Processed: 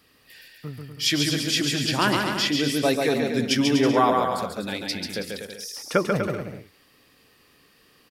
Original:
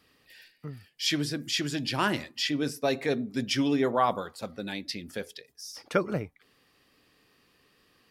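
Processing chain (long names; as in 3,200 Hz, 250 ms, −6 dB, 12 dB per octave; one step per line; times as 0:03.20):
high-shelf EQ 9,200 Hz +6.5 dB
on a send: bouncing-ball delay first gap 140 ms, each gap 0.75×, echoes 5
on the sum: level +4 dB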